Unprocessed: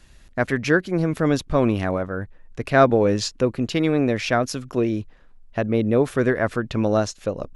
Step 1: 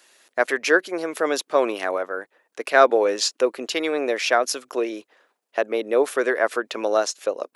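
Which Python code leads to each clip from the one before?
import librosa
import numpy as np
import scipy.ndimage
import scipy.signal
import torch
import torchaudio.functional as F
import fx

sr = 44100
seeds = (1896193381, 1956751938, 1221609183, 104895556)

y = scipy.signal.sosfilt(scipy.signal.butter(4, 380.0, 'highpass', fs=sr, output='sos'), x)
y = fx.high_shelf(y, sr, hz=9300.0, db=8.5)
y = fx.hpss(y, sr, part='percussive', gain_db=3)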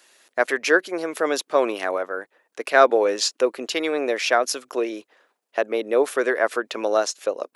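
y = x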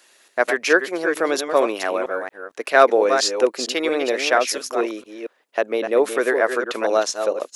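y = fx.reverse_delay(x, sr, ms=229, wet_db=-7.0)
y = y * 10.0 ** (1.5 / 20.0)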